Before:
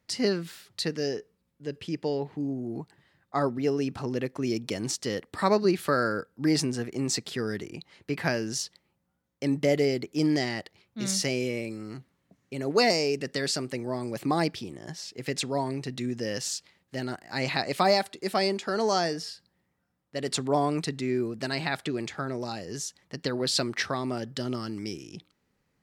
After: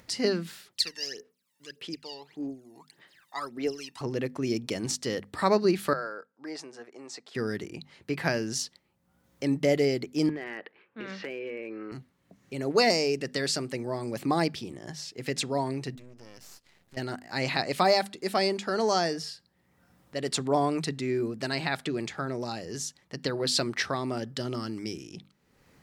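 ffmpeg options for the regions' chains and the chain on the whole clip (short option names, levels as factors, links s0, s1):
-filter_complex "[0:a]asettb=1/sr,asplit=3[s0][s1][s2];[s0]atrim=end=0.684[s3];[s1]atrim=start=0.68:end=4.01,asetpts=PTS-STARTPTS,afade=t=in:d=0.004:c=qsin,afade=t=out:st=3.326:d=0.004:c=qsin,highpass=590,equalizer=f=820:t=o:w=2.3:g=-9.5,aphaser=in_gain=1:out_gain=1:delay=1.1:decay=0.79:speed=1.7:type=sinusoidal[s4];[s2]atrim=start=4.006[s5];[s3][s4]acrossfade=d=0.004:c1=hsin:c2=qsin[s6];[s6][s5]acrossfade=d=0.004:c1=qsin:c2=hsin,asettb=1/sr,asplit=3[s7][s8][s9];[s7]atrim=end=5.934[s10];[s8]atrim=start=5.93:end=7.35,asetpts=PTS-STARTPTS,afade=t=in:d=0.004:c=qsin,afade=t=out:st=1.416:d=0.004:c=qsin,highpass=730,lowpass=4700,equalizer=f=3100:w=0.47:g=-12[s11];[s9]atrim=start=7.346[s12];[s10][s11]acrossfade=d=0.004:c1=hsin:c2=qsin[s13];[s13][s12]acrossfade=d=0.004:c1=qsin:c2=hsin,asettb=1/sr,asplit=3[s14][s15][s16];[s14]atrim=end=10.294[s17];[s15]atrim=start=10.29:end=11.92,asetpts=PTS-STARTPTS,afade=t=in:d=0.004:c=qsin,afade=t=out:st=1.626:d=0.004:c=qsin,highpass=300,equalizer=f=310:t=q:w=4:g=4,equalizer=f=460:t=q:w=4:g=7,equalizer=f=680:t=q:w=4:g=-3,equalizer=f=1100:t=q:w=4:g=5,equalizer=f=1600:t=q:w=4:g=9,equalizer=f=2600:t=q:w=4:g=4,lowpass=f=2800:w=0.5412,lowpass=f=2800:w=1.3066,acompressor=threshold=0.0224:ratio=5:attack=3.2:release=140:knee=1:detection=peak,asoftclip=type=hard:threshold=0.0376[s18];[s16]atrim=start=11.916[s19];[s17][s18]acrossfade=d=0.004:c1=hsin:c2=qsin[s20];[s20][s19]acrossfade=d=0.004:c1=qsin:c2=hsin,asettb=1/sr,asplit=3[s21][s22][s23];[s21]atrim=end=15.954[s24];[s22]atrim=start=15.95:end=16.97,asetpts=PTS-STARTPTS,afade=t=in:d=0.004:c=qsin,afade=t=out:st=1.016:d=0.004:c=qsin,acompressor=threshold=0.00158:ratio=2:attack=3.2:release=140:knee=1:detection=peak,aeval=exprs='max(val(0),0)':c=same[s25];[s23]atrim=start=16.966[s26];[s24][s25]acrossfade=d=0.004:c1=hsin:c2=qsin[s27];[s27][s26]acrossfade=d=0.004:c1=qsin:c2=hsin,bandreject=f=50:t=h:w=6,bandreject=f=100:t=h:w=6,bandreject=f=150:t=h:w=6,bandreject=f=200:t=h:w=6,bandreject=f=250:t=h:w=6,acompressor=mode=upward:threshold=0.00501:ratio=2.5"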